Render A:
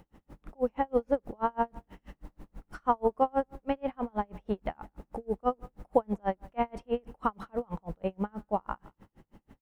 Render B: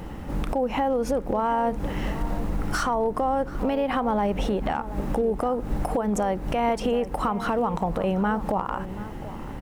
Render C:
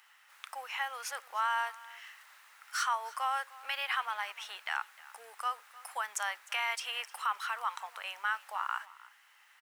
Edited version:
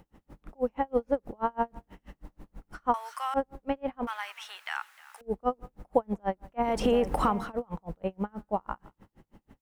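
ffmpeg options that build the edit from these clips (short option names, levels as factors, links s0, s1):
-filter_complex "[2:a]asplit=2[s0][s1];[0:a]asplit=4[s2][s3][s4][s5];[s2]atrim=end=2.942[s6];[s0]atrim=start=2.938:end=3.342[s7];[s3]atrim=start=3.338:end=4.072[s8];[s1]atrim=start=4.068:end=5.212[s9];[s4]atrim=start=5.208:end=6.81[s10];[1:a]atrim=start=6.57:end=7.53[s11];[s5]atrim=start=7.29[s12];[s6][s7]acrossfade=d=0.004:c1=hsin:c2=hsin[s13];[s13][s8]acrossfade=d=0.004:c1=hsin:c2=hsin[s14];[s14][s9]acrossfade=d=0.004:c1=hsin:c2=hsin[s15];[s15][s10]acrossfade=d=0.004:c1=hsin:c2=hsin[s16];[s16][s11]acrossfade=d=0.24:c1=tri:c2=tri[s17];[s17][s12]acrossfade=d=0.24:c1=tri:c2=tri"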